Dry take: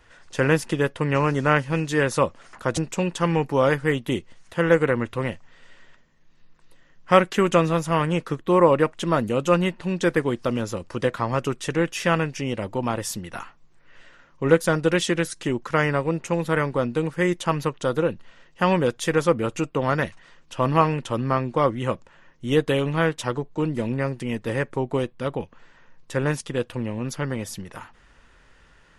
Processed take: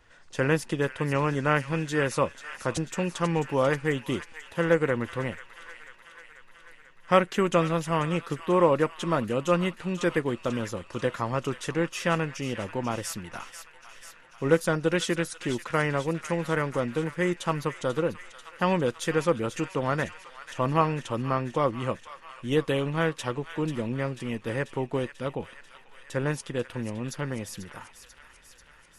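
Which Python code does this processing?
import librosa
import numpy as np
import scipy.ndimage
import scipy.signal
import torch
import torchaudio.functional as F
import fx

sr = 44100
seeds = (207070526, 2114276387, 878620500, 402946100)

y = fx.echo_wet_highpass(x, sr, ms=490, feedback_pct=67, hz=1500.0, wet_db=-10)
y = y * librosa.db_to_amplitude(-4.5)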